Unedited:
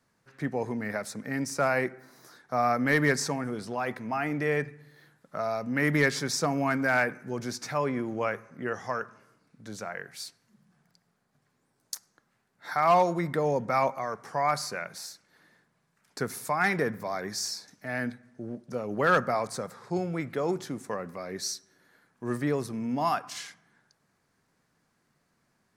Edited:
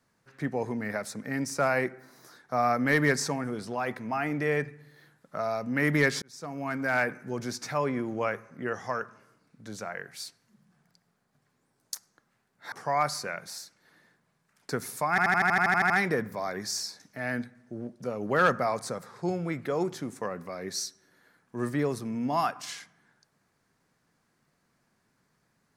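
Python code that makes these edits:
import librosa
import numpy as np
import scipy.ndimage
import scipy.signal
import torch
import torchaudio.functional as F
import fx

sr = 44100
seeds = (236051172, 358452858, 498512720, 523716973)

y = fx.edit(x, sr, fx.fade_in_span(start_s=6.22, length_s=0.9),
    fx.cut(start_s=12.72, length_s=1.48),
    fx.stutter(start_s=16.58, slice_s=0.08, count=11), tone=tone)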